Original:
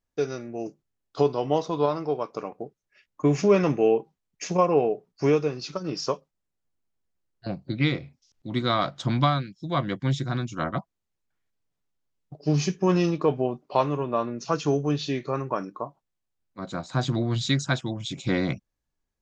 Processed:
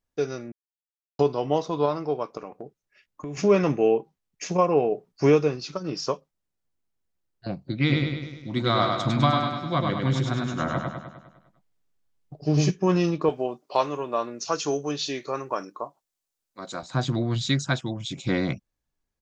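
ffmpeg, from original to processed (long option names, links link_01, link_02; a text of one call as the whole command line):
ffmpeg -i in.wav -filter_complex "[0:a]asettb=1/sr,asplit=3[link_01][link_02][link_03];[link_01]atrim=end=2.374[link_04];[link_02]atrim=start=2.37:end=3.37,asetpts=PTS-STARTPTS,afade=type=in:duration=0.004:curve=qsin,afade=type=out:start_time=0.996:duration=0.004:curve=qsin,acompressor=threshold=-32dB:ratio=6:attack=3.2:release=140:knee=1:detection=peak[link_05];[link_03]atrim=start=3.366[link_06];[link_04][link_05]acrossfade=duration=0.004:curve1=hsin:curve2=qsin[link_07];[link_07][link_06]acrossfade=duration=0.004:curve1=qsin:curve2=hsin,asplit=3[link_08][link_09][link_10];[link_08]afade=type=out:start_time=7.88:duration=0.02[link_11];[link_09]aecho=1:1:101|202|303|404|505|606|707|808:0.708|0.396|0.222|0.124|0.0696|0.039|0.0218|0.0122,afade=type=in:start_time=7.88:duration=0.02,afade=type=out:start_time=12.69:duration=0.02[link_12];[link_10]afade=type=in:start_time=12.69:duration=0.02[link_13];[link_11][link_12][link_13]amix=inputs=3:normalize=0,asettb=1/sr,asplit=3[link_14][link_15][link_16];[link_14]atrim=end=13.294[link_17];[link_15]atrim=start=13.29:end=16.83,asetpts=PTS-STARTPTS,afade=type=in:duration=0.004:curve=qsin,afade=type=out:start_time=3.536:duration=0.004:curve=qsin,bass=frequency=250:gain=-12,treble=frequency=4000:gain=9[link_18];[link_16]atrim=start=16.826[link_19];[link_17][link_18]acrossfade=duration=0.004:curve1=hsin:curve2=qsin[link_20];[link_20][link_19]acrossfade=duration=0.004:curve1=qsin:curve2=hsin,asplit=5[link_21][link_22][link_23][link_24][link_25];[link_21]atrim=end=0.52,asetpts=PTS-STARTPTS,afade=type=out:start_time=0.516:duration=0.004:curve=hsin[link_26];[link_22]atrim=start=0.52:end=1.19,asetpts=PTS-STARTPTS,volume=0[link_27];[link_23]atrim=start=1.19:end=4.922,asetpts=PTS-STARTPTS,afade=type=in:duration=0.004:curve=hsin[link_28];[link_24]atrim=start=4.918:end=5.562,asetpts=PTS-STARTPTS,volume=3dB[link_29];[link_25]atrim=start=5.558[link_30];[link_26][link_27][link_28]concat=n=3:v=0:a=1[link_31];[link_31][link_29]acrossfade=duration=0.004:curve1=hsin:curve2=hsin[link_32];[link_32][link_30]acrossfade=duration=0.004:curve1=hsin:curve2=hsin" out.wav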